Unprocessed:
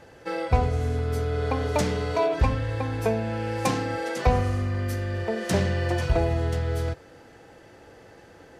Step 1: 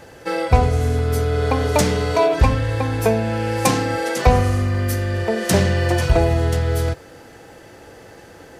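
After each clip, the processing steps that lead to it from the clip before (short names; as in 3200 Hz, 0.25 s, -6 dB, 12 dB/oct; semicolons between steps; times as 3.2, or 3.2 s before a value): high shelf 8100 Hz +10 dB; gain +7 dB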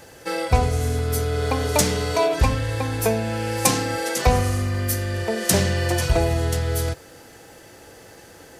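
high shelf 4300 Hz +10.5 dB; gain -4 dB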